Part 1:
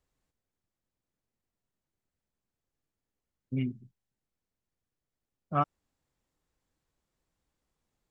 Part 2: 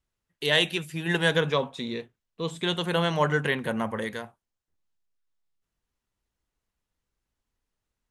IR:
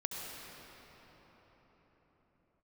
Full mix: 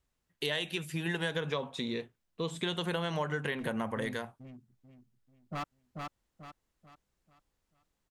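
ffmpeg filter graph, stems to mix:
-filter_complex "[0:a]asoftclip=type=hard:threshold=0.0316,volume=0.668,asplit=2[s0][s1];[s1]volume=0.668[s2];[1:a]acompressor=threshold=0.0447:ratio=3,volume=1,asplit=2[s3][s4];[s4]apad=whole_len=357262[s5];[s0][s5]sidechaincompress=threshold=0.0178:ratio=8:attack=16:release=366[s6];[s2]aecho=0:1:439|878|1317|1756|2195:1|0.37|0.137|0.0507|0.0187[s7];[s6][s3][s7]amix=inputs=3:normalize=0,acompressor=threshold=0.0251:ratio=2"

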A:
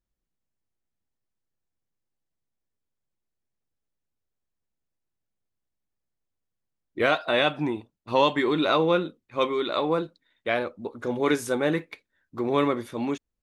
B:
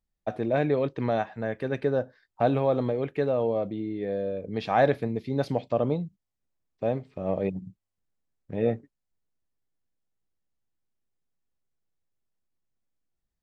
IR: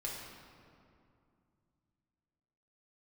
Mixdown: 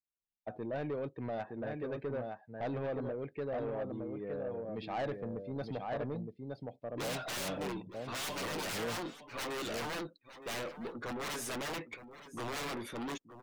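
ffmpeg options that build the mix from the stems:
-filter_complex "[0:a]aeval=exprs='(mod(11.9*val(0)+1,2)-1)/11.9':c=same,highpass=f=180:p=1,aeval=exprs='(tanh(79.4*val(0)+0.1)-tanh(0.1))/79.4':c=same,volume=1.19,asplit=2[s0][s1];[s1]volume=0.211[s2];[1:a]adelay=200,volume=0.335,asplit=2[s3][s4];[s4]volume=0.531[s5];[s2][s5]amix=inputs=2:normalize=0,aecho=0:1:916:1[s6];[s0][s3][s6]amix=inputs=3:normalize=0,afftdn=nr=18:nf=-55,asoftclip=type=tanh:threshold=0.0266"

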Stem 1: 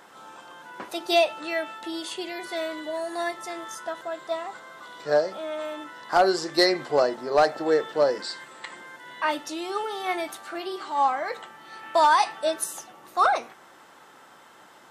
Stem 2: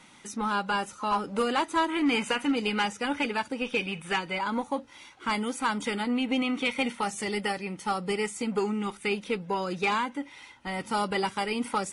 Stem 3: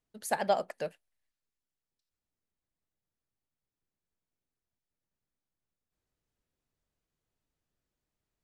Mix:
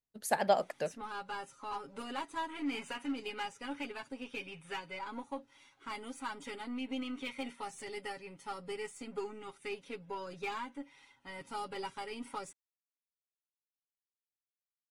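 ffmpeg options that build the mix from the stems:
-filter_complex "[1:a]aeval=exprs='0.126*(cos(1*acos(clip(val(0)/0.126,-1,1)))-cos(1*PI/2))+0.00501*(cos(6*acos(clip(val(0)/0.126,-1,1)))-cos(6*PI/2))':c=same,aecho=1:1:7.3:0.77,adelay=600,volume=0.178[s0];[2:a]agate=range=0.282:threshold=0.00316:ratio=16:detection=peak,volume=1[s1];[s0][s1]amix=inputs=2:normalize=0"

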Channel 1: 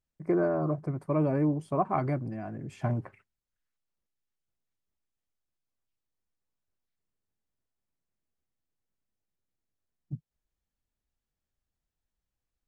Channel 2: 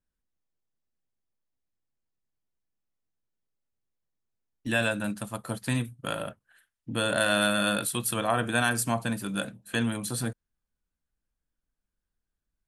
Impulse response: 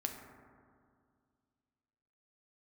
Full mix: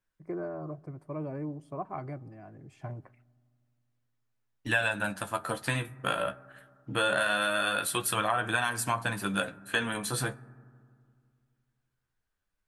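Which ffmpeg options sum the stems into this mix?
-filter_complex "[0:a]volume=0.316,asplit=2[s0][s1];[s1]volume=0.0891[s2];[1:a]equalizer=f=1400:w=0.47:g=8.5,acompressor=threshold=0.0794:ratio=6,flanger=delay=9.3:depth=6.5:regen=29:speed=0.23:shape=sinusoidal,volume=1.12,asplit=2[s3][s4];[s4]volume=0.211[s5];[2:a]atrim=start_sample=2205[s6];[s2][s5]amix=inputs=2:normalize=0[s7];[s7][s6]afir=irnorm=-1:irlink=0[s8];[s0][s3][s8]amix=inputs=3:normalize=0,equalizer=f=230:t=o:w=0.21:g=-9.5"

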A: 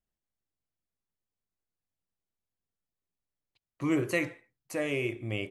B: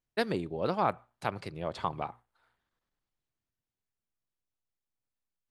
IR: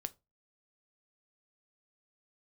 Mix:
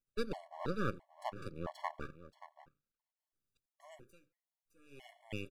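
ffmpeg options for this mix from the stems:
-filter_complex "[0:a]highshelf=f=4000:g=8,bandreject=f=2300:w=7,aeval=exprs='val(0)*pow(10,-36*(0.5-0.5*cos(2*PI*0.56*n/s))/20)':c=same,volume=0.562[s0];[1:a]equalizer=f=2800:w=0.69:g=-5.5,bandreject=f=50:t=h:w=6,bandreject=f=100:t=h:w=6,bandreject=f=150:t=h:w=6,bandreject=f=200:t=h:w=6,bandreject=f=250:t=h:w=6,volume=0.891,asplit=2[s1][s2];[s2]volume=0.178,aecho=0:1:578:1[s3];[s0][s1][s3]amix=inputs=3:normalize=0,aeval=exprs='max(val(0),0)':c=same,afftfilt=real='re*gt(sin(2*PI*1.5*pts/sr)*(1-2*mod(floor(b*sr/1024/570),2)),0)':imag='im*gt(sin(2*PI*1.5*pts/sr)*(1-2*mod(floor(b*sr/1024/570),2)),0)':win_size=1024:overlap=0.75"

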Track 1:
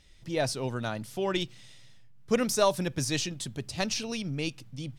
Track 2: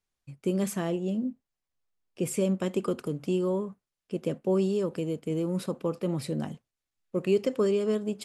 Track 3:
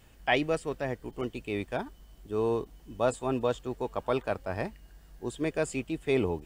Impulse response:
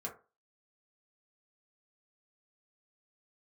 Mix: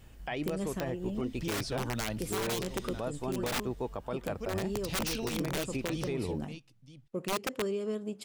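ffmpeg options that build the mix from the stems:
-filter_complex "[0:a]acrossover=split=5400[s0][s1];[s1]acompressor=threshold=0.00398:ratio=4:attack=1:release=60[s2];[s0][s2]amix=inputs=2:normalize=0,adelay=1150,volume=1.41,asplit=3[s3][s4][s5];[s3]atrim=end=3.6,asetpts=PTS-STARTPTS,afade=t=out:st=3.596:d=0.004:c=hsin[s6];[s4]atrim=start=3.6:end=4.75,asetpts=PTS-STARTPTS,volume=0[s7];[s5]atrim=start=4.75,asetpts=PTS-STARTPTS,afade=t=in:d=0.004:c=hsin[s8];[s6][s7][s8]concat=n=3:v=0:a=1,asplit=2[s9][s10];[s10]volume=0.119[s11];[1:a]volume=0.631[s12];[2:a]lowshelf=f=280:g=6,acompressor=threshold=0.0398:ratio=6,volume=0.944[s13];[s9][s12]amix=inputs=2:normalize=0,aeval=exprs='(mod(11.9*val(0)+1,2)-1)/11.9':c=same,acompressor=threshold=0.0158:ratio=1.5,volume=1[s14];[s11]aecho=0:1:946:1[s15];[s13][s14][s15]amix=inputs=3:normalize=0,alimiter=level_in=1.06:limit=0.0631:level=0:latency=1:release=73,volume=0.944"

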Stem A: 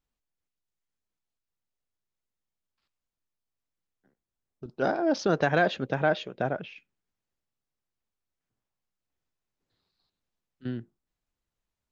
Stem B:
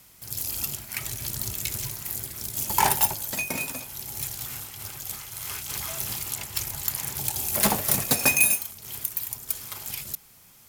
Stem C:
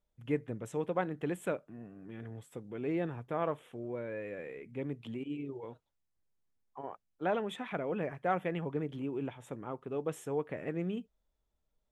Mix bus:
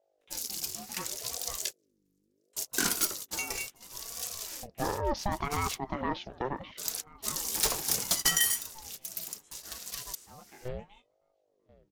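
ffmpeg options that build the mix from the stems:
-filter_complex "[0:a]alimiter=limit=0.168:level=0:latency=1,aeval=exprs='val(0)+0.000355*(sin(2*PI*50*n/s)+sin(2*PI*2*50*n/s)/2+sin(2*PI*3*50*n/s)/3+sin(2*PI*4*50*n/s)/4+sin(2*PI*5*50*n/s)/5)':c=same,lowpass=f=1700:p=1,volume=0.841,asplit=2[s0][s1];[s1]volume=0.0708[s2];[1:a]volume=0.398[s3];[2:a]flanger=delay=9.4:depth=2.6:regen=45:speed=0.27:shape=triangular,highpass=f=480:w=0.5412,highpass=f=480:w=1.3066,flanger=delay=20:depth=2.7:speed=2.1,volume=0.794,asplit=3[s4][s5][s6];[s4]atrim=end=1.66,asetpts=PTS-STARTPTS,afade=t=out:st=1.656:d=0.004:c=hsin[s7];[s5]atrim=start=1.66:end=2.53,asetpts=PTS-STARTPTS,volume=0[s8];[s6]atrim=start=2.53,asetpts=PTS-STARTPTS,afade=t=in:d=0.004:c=hsin[s9];[s7][s8][s9]concat=n=3:v=0:a=1,asplit=2[s10][s11];[s11]apad=whole_len=471142[s12];[s3][s12]sidechaingate=range=0.00398:threshold=0.00112:ratio=16:detection=peak[s13];[s2]aecho=0:1:1037|2074|3111|4148|5185|6222:1|0.41|0.168|0.0689|0.0283|0.0116[s14];[s0][s13][s10][s14]amix=inputs=4:normalize=0,equalizer=f=5600:t=o:w=1.5:g=12.5,aeval=exprs='val(0)*sin(2*PI*420*n/s+420*0.45/0.71*sin(2*PI*0.71*n/s))':c=same"

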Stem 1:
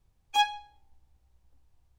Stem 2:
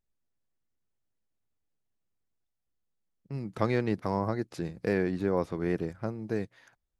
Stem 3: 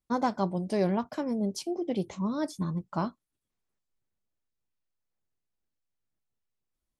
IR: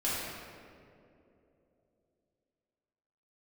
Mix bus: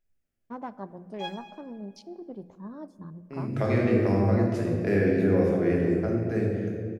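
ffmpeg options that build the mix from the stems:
-filter_complex "[0:a]adelay=850,volume=0.178,asplit=2[s0][s1];[s1]volume=0.299[s2];[1:a]equalizer=f=100:t=o:w=0.67:g=4,equalizer=f=1000:t=o:w=0.67:g=-12,equalizer=f=4000:t=o:w=0.67:g=-8,volume=1.33,asplit=2[s3][s4];[s4]volume=0.562[s5];[2:a]afwtdn=0.00891,adelay=400,volume=0.299,asplit=2[s6][s7];[s7]volume=0.0668[s8];[s0][s3]amix=inputs=2:normalize=0,highpass=380,lowpass=5200,acompressor=threshold=0.0282:ratio=6,volume=1[s9];[3:a]atrim=start_sample=2205[s10];[s2][s5][s8]amix=inputs=3:normalize=0[s11];[s11][s10]afir=irnorm=-1:irlink=0[s12];[s6][s9][s12]amix=inputs=3:normalize=0,bandreject=f=60:t=h:w=6,bandreject=f=120:t=h:w=6,bandreject=f=180:t=h:w=6"

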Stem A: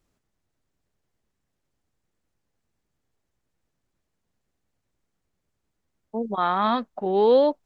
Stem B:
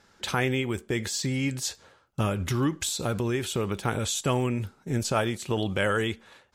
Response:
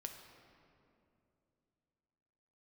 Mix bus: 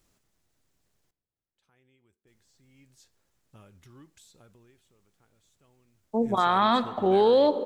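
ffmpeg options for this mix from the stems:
-filter_complex "[0:a]highshelf=f=3000:g=7.5,volume=0.944,asplit=3[s0][s1][s2];[s0]atrim=end=1.11,asetpts=PTS-STARTPTS,afade=t=out:st=1.106:d=0.004:c=hsin[s3];[s1]atrim=start=1.11:end=2.27,asetpts=PTS-STARTPTS,volume=0[s4];[s2]atrim=start=2.27,asetpts=PTS-STARTPTS,afade=t=in:d=0.004:c=hsin[s5];[s3][s4][s5]concat=n=3:v=0:a=1,asplit=3[s6][s7][s8];[s7]volume=0.668[s9];[1:a]dynaudnorm=f=200:g=5:m=2.37,adelay=1350,volume=0.355,afade=t=in:st=2.58:d=0.56:silence=0.281838,afade=t=out:st=4.25:d=0.66:silence=0.223872[s10];[s8]apad=whole_len=348304[s11];[s10][s11]sidechaingate=range=0.0562:threshold=0.0112:ratio=16:detection=peak[s12];[2:a]atrim=start_sample=2205[s13];[s9][s13]afir=irnorm=-1:irlink=0[s14];[s6][s12][s14]amix=inputs=3:normalize=0,alimiter=limit=0.251:level=0:latency=1"

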